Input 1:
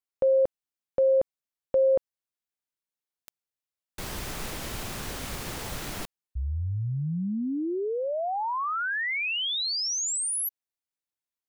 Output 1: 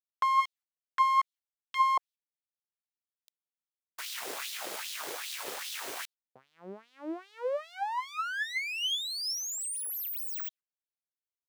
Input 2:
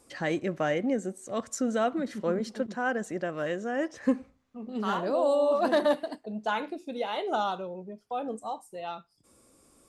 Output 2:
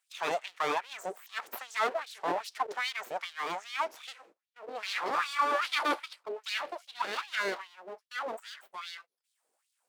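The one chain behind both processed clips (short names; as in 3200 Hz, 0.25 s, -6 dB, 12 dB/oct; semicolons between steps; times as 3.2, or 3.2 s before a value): gate -46 dBFS, range -15 dB; full-wave rectifier; LFO high-pass sine 2.5 Hz 390–3700 Hz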